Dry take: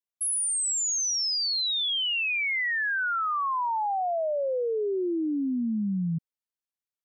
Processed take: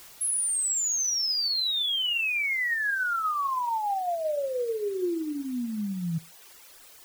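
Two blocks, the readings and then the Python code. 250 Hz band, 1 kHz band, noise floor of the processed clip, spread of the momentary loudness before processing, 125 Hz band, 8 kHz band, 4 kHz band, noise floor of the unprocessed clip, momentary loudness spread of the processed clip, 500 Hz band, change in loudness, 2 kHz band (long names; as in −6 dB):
−3.0 dB, −0.5 dB, −51 dBFS, 4 LU, −2.0 dB, +0.5 dB, 0.0 dB, below −85 dBFS, 8 LU, −1.5 dB, −0.5 dB, 0.0 dB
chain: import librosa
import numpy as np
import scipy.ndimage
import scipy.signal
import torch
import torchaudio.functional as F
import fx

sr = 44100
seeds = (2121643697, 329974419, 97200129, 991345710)

y = fx.rev_gated(x, sr, seeds[0], gate_ms=160, shape='falling', drr_db=11.0)
y = fx.quant_dither(y, sr, seeds[1], bits=8, dither='triangular')
y = fx.dereverb_blind(y, sr, rt60_s=1.3)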